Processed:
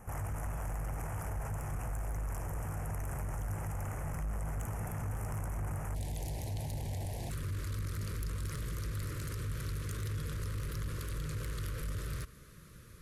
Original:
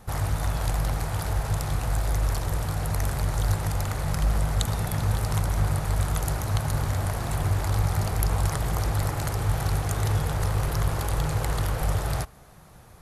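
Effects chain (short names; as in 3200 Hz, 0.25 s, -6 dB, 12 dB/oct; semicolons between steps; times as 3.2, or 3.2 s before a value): soft clip -19.5 dBFS, distortion -17 dB; limiter -28.5 dBFS, peak gain reduction 9 dB; Butterworth band-stop 4000 Hz, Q 1.1, from 5.94 s 1300 Hz, from 7.29 s 780 Hz; gain -3 dB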